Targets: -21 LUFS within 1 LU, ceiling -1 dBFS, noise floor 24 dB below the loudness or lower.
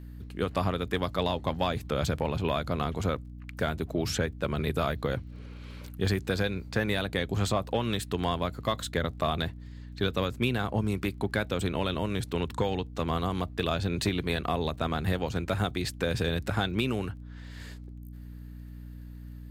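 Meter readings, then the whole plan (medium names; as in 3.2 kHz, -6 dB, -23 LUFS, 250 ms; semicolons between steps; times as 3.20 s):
tick rate 22 per s; hum 60 Hz; highest harmonic 300 Hz; hum level -40 dBFS; loudness -30.5 LUFS; peak level -14.0 dBFS; loudness target -21.0 LUFS
-> de-click; hum notches 60/120/180/240/300 Hz; trim +9.5 dB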